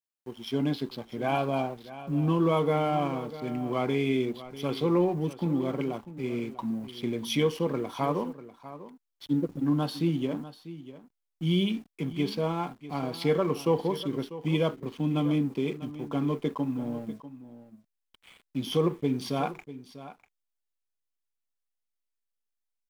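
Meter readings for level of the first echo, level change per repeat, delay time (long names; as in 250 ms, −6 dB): −15.0 dB, repeats not evenly spaced, 645 ms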